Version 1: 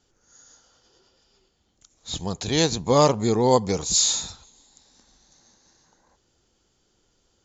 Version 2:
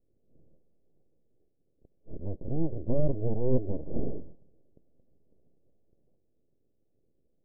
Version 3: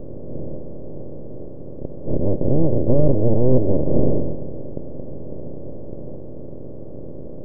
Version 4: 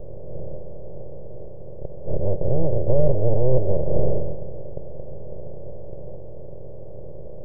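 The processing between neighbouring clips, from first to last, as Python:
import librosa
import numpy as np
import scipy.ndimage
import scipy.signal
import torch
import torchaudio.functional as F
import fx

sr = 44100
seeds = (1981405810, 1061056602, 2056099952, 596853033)

y1 = np.abs(x)
y1 = scipy.signal.sosfilt(scipy.signal.butter(6, 560.0, 'lowpass', fs=sr, output='sos'), y1)
y1 = y1 * 10.0 ** (-1.5 / 20.0)
y2 = fx.bin_compress(y1, sr, power=0.4)
y2 = y2 * 10.0 ** (8.0 / 20.0)
y3 = fx.fixed_phaser(y2, sr, hz=650.0, stages=4)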